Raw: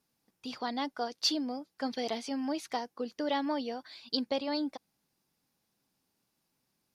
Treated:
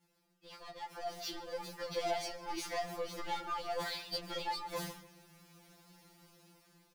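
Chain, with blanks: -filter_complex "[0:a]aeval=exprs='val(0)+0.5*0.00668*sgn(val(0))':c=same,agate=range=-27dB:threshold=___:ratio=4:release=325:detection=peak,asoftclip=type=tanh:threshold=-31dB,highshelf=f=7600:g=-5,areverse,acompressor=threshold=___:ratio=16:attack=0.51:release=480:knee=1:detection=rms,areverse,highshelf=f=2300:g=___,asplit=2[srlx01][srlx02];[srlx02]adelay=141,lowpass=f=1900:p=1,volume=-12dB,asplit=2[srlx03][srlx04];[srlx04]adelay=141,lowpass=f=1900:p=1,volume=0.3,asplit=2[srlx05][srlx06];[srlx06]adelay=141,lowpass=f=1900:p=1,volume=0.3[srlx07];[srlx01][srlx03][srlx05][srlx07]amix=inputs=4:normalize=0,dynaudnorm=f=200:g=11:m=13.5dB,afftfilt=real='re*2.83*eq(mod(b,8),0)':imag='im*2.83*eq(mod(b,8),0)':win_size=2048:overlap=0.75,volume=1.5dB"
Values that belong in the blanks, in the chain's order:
-42dB, -43dB, -3.5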